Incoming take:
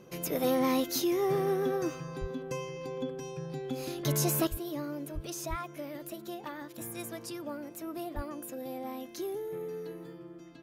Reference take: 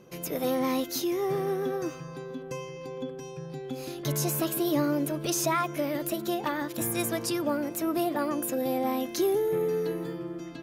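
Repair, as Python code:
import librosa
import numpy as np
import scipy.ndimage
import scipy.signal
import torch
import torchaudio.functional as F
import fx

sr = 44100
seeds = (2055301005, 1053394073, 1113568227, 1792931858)

y = fx.fix_deplosive(x, sr, at_s=(2.2, 4.5, 5.14, 5.49, 8.15))
y = fx.gain(y, sr, db=fx.steps((0.0, 0.0), (4.47, 11.0)))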